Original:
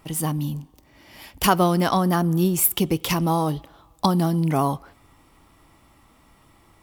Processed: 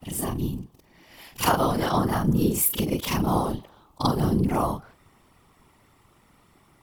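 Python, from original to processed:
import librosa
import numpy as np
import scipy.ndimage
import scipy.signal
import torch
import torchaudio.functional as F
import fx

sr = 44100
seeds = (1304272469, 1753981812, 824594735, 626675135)

y = fx.frame_reverse(x, sr, frame_ms=96.0)
y = fx.whisperise(y, sr, seeds[0])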